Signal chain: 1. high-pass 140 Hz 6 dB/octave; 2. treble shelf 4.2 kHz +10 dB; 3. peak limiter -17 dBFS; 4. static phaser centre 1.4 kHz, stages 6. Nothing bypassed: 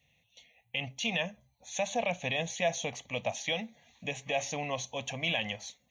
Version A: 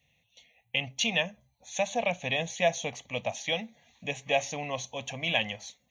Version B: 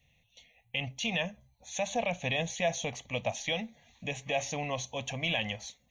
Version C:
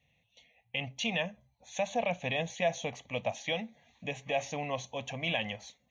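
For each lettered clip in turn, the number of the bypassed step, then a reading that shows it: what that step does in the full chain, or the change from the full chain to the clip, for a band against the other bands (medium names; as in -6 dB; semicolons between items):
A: 3, crest factor change +4.0 dB; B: 1, 125 Hz band +3.0 dB; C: 2, 8 kHz band -6.5 dB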